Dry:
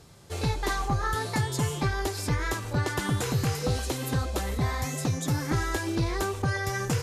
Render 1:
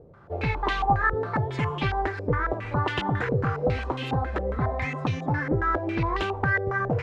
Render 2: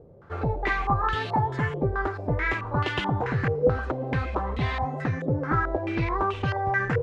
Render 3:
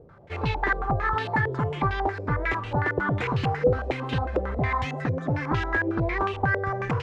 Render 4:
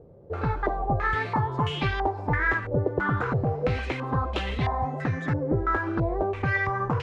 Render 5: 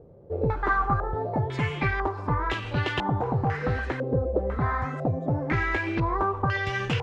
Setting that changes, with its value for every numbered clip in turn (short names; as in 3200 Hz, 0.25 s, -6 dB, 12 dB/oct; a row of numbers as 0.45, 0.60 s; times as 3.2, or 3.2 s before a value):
stepped low-pass, rate: 7.3, 4.6, 11, 3, 2 Hz